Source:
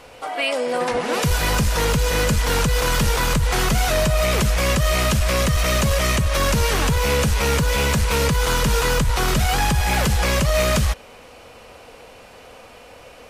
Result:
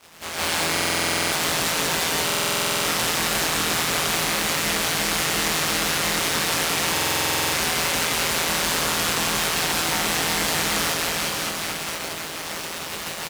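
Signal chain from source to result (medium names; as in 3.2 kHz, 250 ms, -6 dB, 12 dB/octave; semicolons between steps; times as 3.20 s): spectral contrast reduction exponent 0.13; in parallel at -11 dB: fuzz box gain 43 dB, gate -41 dBFS; on the sum: low-pass 3.6 kHz 6 dB/octave; feedback comb 120 Hz, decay 0.16 s, harmonics all, mix 90%; ring modulator 83 Hz; on a send: reverse bouncing-ball echo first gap 170 ms, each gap 1.1×, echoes 5; on the sum: level rider gain up to 16 dB; high-pass 57 Hz; compression 5:1, threshold -20 dBFS, peak gain reduction 8.5 dB; buffer glitch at 0.72/2.25/6.93 s, samples 2048, times 12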